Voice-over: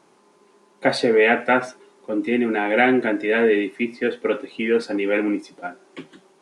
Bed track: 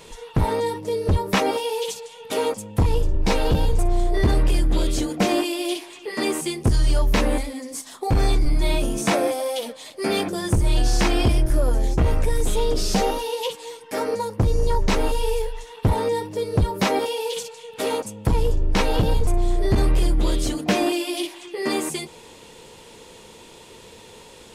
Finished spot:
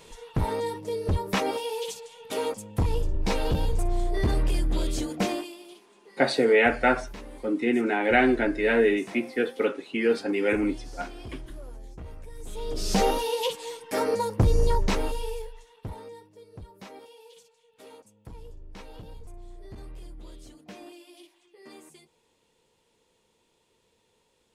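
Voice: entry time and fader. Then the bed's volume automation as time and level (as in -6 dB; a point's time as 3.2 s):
5.35 s, -3.5 dB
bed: 5.25 s -6 dB
5.67 s -22.5 dB
12.31 s -22.5 dB
13.02 s -1 dB
14.62 s -1 dB
16.35 s -24.5 dB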